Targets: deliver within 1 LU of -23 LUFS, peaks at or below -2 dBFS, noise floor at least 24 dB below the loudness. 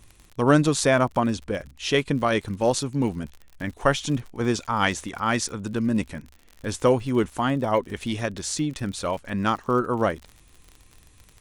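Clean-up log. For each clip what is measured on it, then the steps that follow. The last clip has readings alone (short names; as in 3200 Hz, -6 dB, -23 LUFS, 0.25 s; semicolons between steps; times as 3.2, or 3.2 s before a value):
ticks 50/s; loudness -24.5 LUFS; peak -4.0 dBFS; loudness target -23.0 LUFS
-> de-click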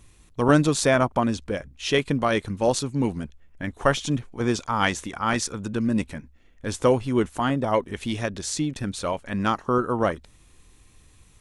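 ticks 0/s; loudness -24.5 LUFS; peak -4.0 dBFS; loudness target -23.0 LUFS
-> gain +1.5 dB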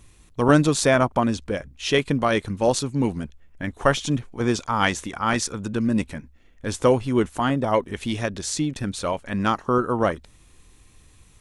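loudness -23.0 LUFS; peak -2.5 dBFS; noise floor -54 dBFS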